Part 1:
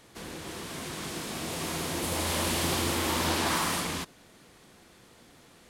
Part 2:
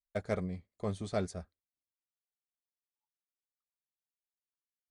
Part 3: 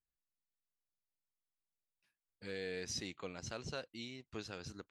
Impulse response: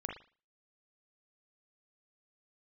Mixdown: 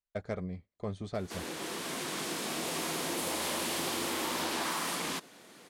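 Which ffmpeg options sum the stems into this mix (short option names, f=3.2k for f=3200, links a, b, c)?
-filter_complex "[0:a]highpass=220,adelay=1150,volume=2dB[a];[1:a]adynamicsmooth=sensitivity=6:basefreq=6.3k,volume=0dB[b];[a][b]amix=inputs=2:normalize=0,acompressor=threshold=-31dB:ratio=5"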